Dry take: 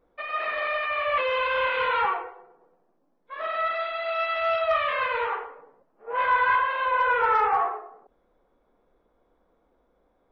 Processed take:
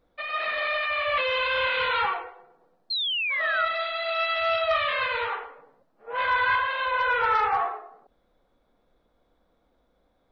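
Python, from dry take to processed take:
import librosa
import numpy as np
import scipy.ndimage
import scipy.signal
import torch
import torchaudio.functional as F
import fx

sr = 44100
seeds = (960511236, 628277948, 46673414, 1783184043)

y = fx.graphic_eq_15(x, sr, hz=(100, 400, 1000, 4000), db=(5, -6, -4, 9))
y = fx.spec_paint(y, sr, seeds[0], shape='fall', start_s=2.9, length_s=0.77, low_hz=1300.0, high_hz=4300.0, level_db=-28.0)
y = y * 10.0 ** (1.0 / 20.0)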